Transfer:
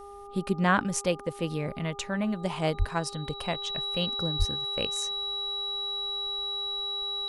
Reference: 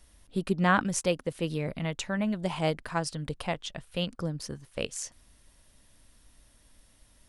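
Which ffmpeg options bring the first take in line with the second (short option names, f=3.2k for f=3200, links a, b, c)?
-filter_complex "[0:a]bandreject=f=403.6:t=h:w=4,bandreject=f=807.2:t=h:w=4,bandreject=f=1.2108k:t=h:w=4,bandreject=f=3.9k:w=30,asplit=3[a][b][c];[a]afade=t=out:st=2.78:d=0.02[d];[b]highpass=f=140:w=0.5412,highpass=f=140:w=1.3066,afade=t=in:st=2.78:d=0.02,afade=t=out:st=2.9:d=0.02[e];[c]afade=t=in:st=2.9:d=0.02[f];[d][e][f]amix=inputs=3:normalize=0,asplit=3[g][h][i];[g]afade=t=out:st=4.38:d=0.02[j];[h]highpass=f=140:w=0.5412,highpass=f=140:w=1.3066,afade=t=in:st=4.38:d=0.02,afade=t=out:st=4.5:d=0.02[k];[i]afade=t=in:st=4.5:d=0.02[l];[j][k][l]amix=inputs=3:normalize=0"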